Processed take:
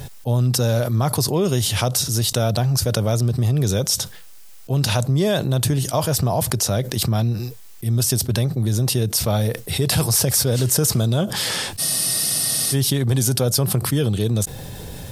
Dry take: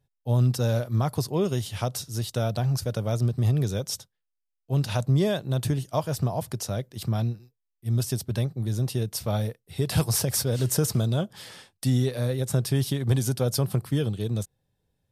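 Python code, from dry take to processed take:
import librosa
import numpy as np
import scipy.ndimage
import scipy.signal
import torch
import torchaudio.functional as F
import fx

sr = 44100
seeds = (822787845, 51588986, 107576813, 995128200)

y = fx.bass_treble(x, sr, bass_db=-1, treble_db=4)
y = fx.spec_freeze(y, sr, seeds[0], at_s=11.82, hold_s=0.91)
y = fx.env_flatten(y, sr, amount_pct=70)
y = y * 10.0 ** (2.5 / 20.0)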